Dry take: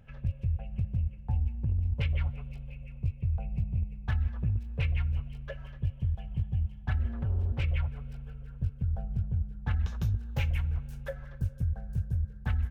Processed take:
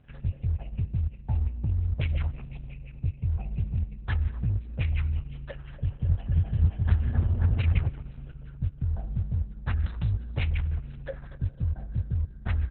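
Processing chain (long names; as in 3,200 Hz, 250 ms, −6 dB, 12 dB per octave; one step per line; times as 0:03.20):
0:05.52–0:07.89: echo whose low-pass opens from repeat to repeat 265 ms, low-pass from 750 Hz, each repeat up 1 octave, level 0 dB
level +2 dB
Opus 6 kbit/s 48,000 Hz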